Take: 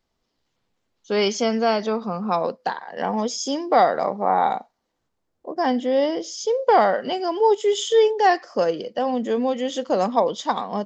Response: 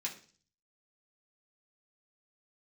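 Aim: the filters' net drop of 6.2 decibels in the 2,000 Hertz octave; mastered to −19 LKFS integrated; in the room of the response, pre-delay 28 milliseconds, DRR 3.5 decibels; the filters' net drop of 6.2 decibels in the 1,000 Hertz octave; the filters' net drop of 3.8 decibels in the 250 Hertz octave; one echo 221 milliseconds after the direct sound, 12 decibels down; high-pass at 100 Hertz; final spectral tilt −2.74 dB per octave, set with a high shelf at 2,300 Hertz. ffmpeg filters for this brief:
-filter_complex "[0:a]highpass=100,equalizer=frequency=250:width_type=o:gain=-4,equalizer=frequency=1000:width_type=o:gain=-8.5,equalizer=frequency=2000:width_type=o:gain=-7.5,highshelf=frequency=2300:gain=6,aecho=1:1:221:0.251,asplit=2[link_01][link_02];[1:a]atrim=start_sample=2205,adelay=28[link_03];[link_02][link_03]afir=irnorm=-1:irlink=0,volume=-4.5dB[link_04];[link_01][link_04]amix=inputs=2:normalize=0,volume=4.5dB"

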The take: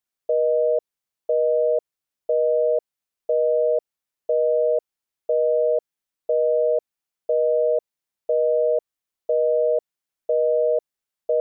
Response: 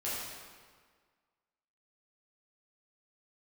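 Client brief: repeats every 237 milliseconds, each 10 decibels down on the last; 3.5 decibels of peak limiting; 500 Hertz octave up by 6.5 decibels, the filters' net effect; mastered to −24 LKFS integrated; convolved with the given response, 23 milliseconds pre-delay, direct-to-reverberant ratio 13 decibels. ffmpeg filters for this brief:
-filter_complex "[0:a]equalizer=frequency=500:width_type=o:gain=7.5,alimiter=limit=-10.5dB:level=0:latency=1,aecho=1:1:237|474|711|948:0.316|0.101|0.0324|0.0104,asplit=2[link_01][link_02];[1:a]atrim=start_sample=2205,adelay=23[link_03];[link_02][link_03]afir=irnorm=-1:irlink=0,volume=-18dB[link_04];[link_01][link_04]amix=inputs=2:normalize=0,volume=-5.5dB"

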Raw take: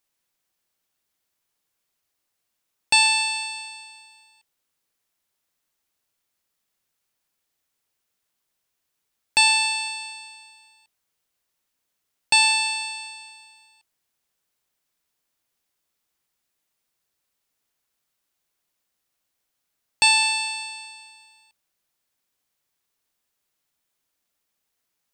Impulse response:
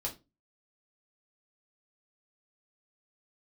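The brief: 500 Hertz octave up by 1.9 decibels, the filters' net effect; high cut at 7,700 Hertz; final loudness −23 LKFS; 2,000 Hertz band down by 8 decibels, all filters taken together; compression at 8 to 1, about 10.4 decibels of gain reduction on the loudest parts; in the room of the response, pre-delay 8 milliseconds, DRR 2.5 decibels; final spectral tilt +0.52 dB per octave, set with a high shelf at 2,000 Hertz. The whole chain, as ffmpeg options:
-filter_complex "[0:a]lowpass=7700,equalizer=frequency=500:width_type=o:gain=3.5,highshelf=frequency=2000:gain=-5,equalizer=frequency=2000:width_type=o:gain=-8,acompressor=threshold=-29dB:ratio=8,asplit=2[link_01][link_02];[1:a]atrim=start_sample=2205,adelay=8[link_03];[link_02][link_03]afir=irnorm=-1:irlink=0,volume=-4dB[link_04];[link_01][link_04]amix=inputs=2:normalize=0,volume=9.5dB"

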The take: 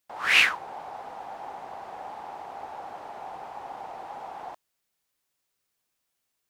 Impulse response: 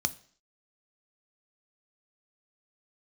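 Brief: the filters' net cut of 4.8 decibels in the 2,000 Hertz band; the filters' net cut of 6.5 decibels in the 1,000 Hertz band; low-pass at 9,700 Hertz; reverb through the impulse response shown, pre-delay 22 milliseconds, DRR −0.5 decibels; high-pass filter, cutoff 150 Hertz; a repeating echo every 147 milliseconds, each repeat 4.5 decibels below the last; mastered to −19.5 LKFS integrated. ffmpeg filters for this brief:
-filter_complex "[0:a]highpass=150,lowpass=9700,equalizer=frequency=1000:width_type=o:gain=-8,equalizer=frequency=2000:width_type=o:gain=-4.5,aecho=1:1:147|294|441|588|735|882|1029|1176|1323:0.596|0.357|0.214|0.129|0.0772|0.0463|0.0278|0.0167|0.01,asplit=2[link_01][link_02];[1:a]atrim=start_sample=2205,adelay=22[link_03];[link_02][link_03]afir=irnorm=-1:irlink=0,volume=-4.5dB[link_04];[link_01][link_04]amix=inputs=2:normalize=0,volume=6dB"

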